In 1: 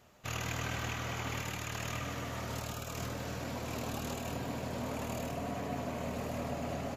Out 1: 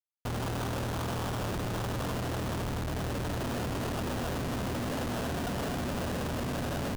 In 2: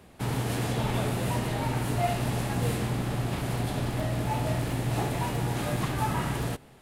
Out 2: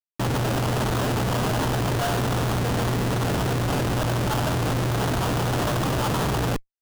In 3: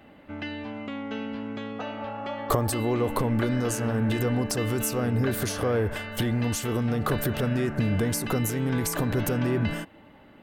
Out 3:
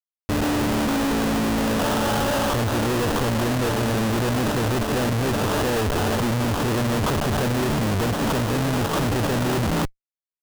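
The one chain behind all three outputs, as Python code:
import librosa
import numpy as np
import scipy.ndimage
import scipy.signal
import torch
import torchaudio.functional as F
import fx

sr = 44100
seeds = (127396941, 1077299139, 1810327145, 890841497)

y = fx.schmitt(x, sr, flips_db=-40.0)
y = scipy.signal.sosfilt(scipy.signal.cheby1(2, 1.0, 4600.0, 'lowpass', fs=sr, output='sos'), y)
y = fx.sample_hold(y, sr, seeds[0], rate_hz=2200.0, jitter_pct=20)
y = F.gain(torch.from_numpy(y), 6.5).numpy()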